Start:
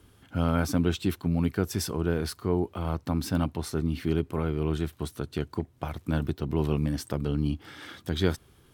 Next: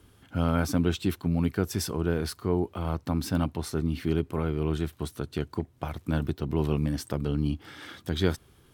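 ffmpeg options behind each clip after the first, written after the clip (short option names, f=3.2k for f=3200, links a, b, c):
-af anull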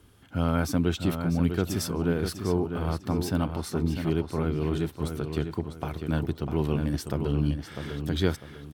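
-filter_complex "[0:a]asplit=2[a][b];[b]adelay=649,lowpass=f=4.9k:p=1,volume=-7dB,asplit=2[c][d];[d]adelay=649,lowpass=f=4.9k:p=1,volume=0.33,asplit=2[e][f];[f]adelay=649,lowpass=f=4.9k:p=1,volume=0.33,asplit=2[g][h];[h]adelay=649,lowpass=f=4.9k:p=1,volume=0.33[i];[a][c][e][g][i]amix=inputs=5:normalize=0"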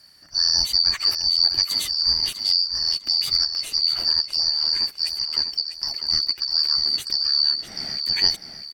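-af "afftfilt=real='real(if(lt(b,272),68*(eq(floor(b/68),0)*1+eq(floor(b/68),1)*2+eq(floor(b/68),2)*3+eq(floor(b/68),3)*0)+mod(b,68),b),0)':imag='imag(if(lt(b,272),68*(eq(floor(b/68),0)*1+eq(floor(b/68),1)*2+eq(floor(b/68),2)*3+eq(floor(b/68),3)*0)+mod(b,68),b),0)':win_size=2048:overlap=0.75,volume=5dB"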